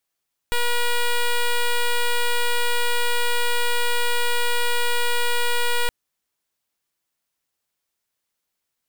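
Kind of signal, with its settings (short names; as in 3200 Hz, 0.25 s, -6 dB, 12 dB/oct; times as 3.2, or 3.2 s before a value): pulse 480 Hz, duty 8% -19.5 dBFS 5.37 s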